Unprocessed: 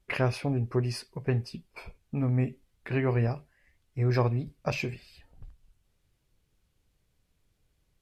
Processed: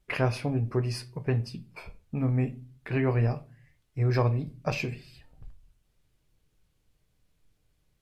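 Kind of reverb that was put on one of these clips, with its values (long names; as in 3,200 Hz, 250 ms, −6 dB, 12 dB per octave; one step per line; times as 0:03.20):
rectangular room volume 210 cubic metres, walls furnished, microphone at 0.47 metres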